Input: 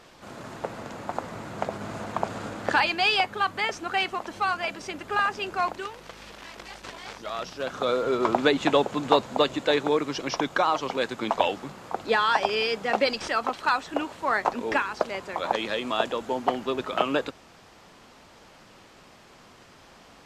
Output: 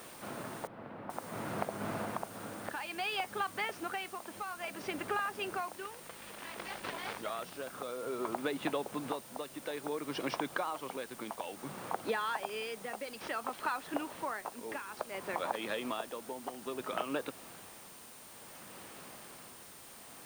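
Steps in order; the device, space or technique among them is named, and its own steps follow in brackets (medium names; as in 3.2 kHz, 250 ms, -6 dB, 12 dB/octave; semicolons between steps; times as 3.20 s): medium wave at night (band-pass 110–3500 Hz; compression, threshold -33 dBFS, peak gain reduction 17.5 dB; tremolo 0.58 Hz, depth 57%; whistle 9 kHz -59 dBFS; white noise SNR 15 dB); 0.67–1.10 s: distance through air 470 m; trim +1 dB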